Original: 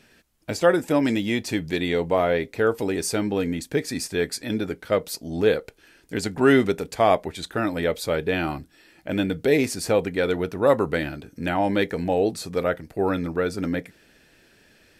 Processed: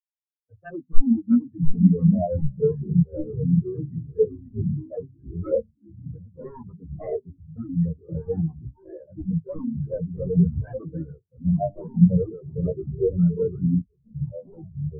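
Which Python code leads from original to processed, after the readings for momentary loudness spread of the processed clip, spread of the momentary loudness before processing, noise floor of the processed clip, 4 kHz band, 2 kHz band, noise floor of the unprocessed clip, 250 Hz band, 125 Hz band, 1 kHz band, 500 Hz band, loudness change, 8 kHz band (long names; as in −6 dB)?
20 LU, 9 LU, −68 dBFS, below −40 dB, below −25 dB, −58 dBFS, +2.0 dB, +8.5 dB, −14.0 dB, −6.0 dB, −0.5 dB, below −40 dB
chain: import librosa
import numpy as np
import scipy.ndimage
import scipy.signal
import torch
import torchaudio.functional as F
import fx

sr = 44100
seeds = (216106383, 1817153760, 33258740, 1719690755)

y = fx.law_mismatch(x, sr, coded='A')
y = scipy.signal.sosfilt(scipy.signal.butter(6, 2200.0, 'lowpass', fs=sr, output='sos'), y)
y = fx.dynamic_eq(y, sr, hz=160.0, q=0.81, threshold_db=-35.0, ratio=4.0, max_db=3)
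y = fx.env_flanger(y, sr, rest_ms=6.9, full_db=-17.0)
y = fx.fold_sine(y, sr, drive_db=13, ceiling_db=-7.5)
y = fx.chorus_voices(y, sr, voices=6, hz=0.37, base_ms=12, depth_ms=1.1, mix_pct=45)
y = 10.0 ** (-10.5 / 20.0) * np.tanh(y / 10.0 ** (-10.5 / 20.0))
y = fx.hum_notches(y, sr, base_hz=50, count=8)
y = y + 10.0 ** (-16.0 / 20.0) * np.pad(y, (int(680 * sr / 1000.0), 0))[:len(y)]
y = fx.echo_pitch(y, sr, ms=530, semitones=-3, count=3, db_per_echo=-3.0)
y = fx.spectral_expand(y, sr, expansion=4.0)
y = y * librosa.db_to_amplitude(1.5)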